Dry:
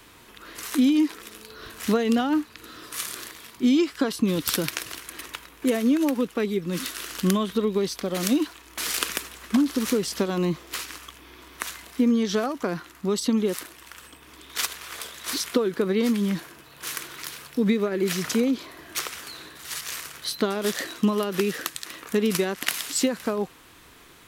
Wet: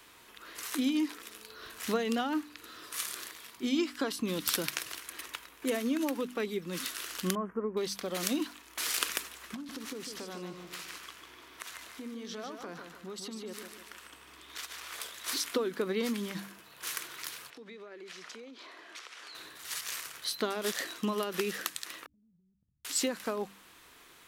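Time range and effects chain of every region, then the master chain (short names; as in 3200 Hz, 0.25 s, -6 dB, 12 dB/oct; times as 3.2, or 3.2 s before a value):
7.35–7.77 Chebyshev band-stop 1400–9600 Hz + air absorption 250 m
9.54–14.93 compressor 3:1, threshold -33 dBFS + high shelf 6900 Hz -5.5 dB + feedback echo 0.149 s, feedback 42%, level -6.5 dB
17.5–19.35 BPF 330–5400 Hz + compressor 4:1, threshold -39 dBFS
22.06–22.85 inverse Chebyshev low-pass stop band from 670 Hz, stop band 80 dB + compressor 4:1, threshold -57 dBFS
whole clip: low shelf 330 Hz -9 dB; de-hum 49.38 Hz, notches 6; gain -4.5 dB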